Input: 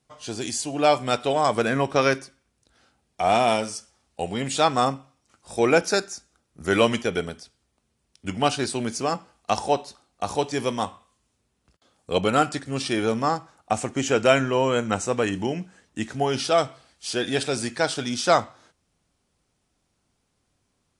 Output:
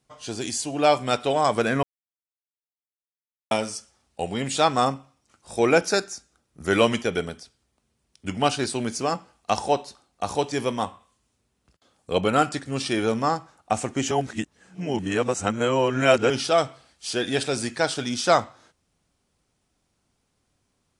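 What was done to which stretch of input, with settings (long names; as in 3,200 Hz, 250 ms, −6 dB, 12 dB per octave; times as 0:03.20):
0:01.83–0:03.51: silence
0:10.62–0:12.39: dynamic equaliser 5,900 Hz, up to −4 dB, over −48 dBFS, Q 0.85
0:14.11–0:16.30: reverse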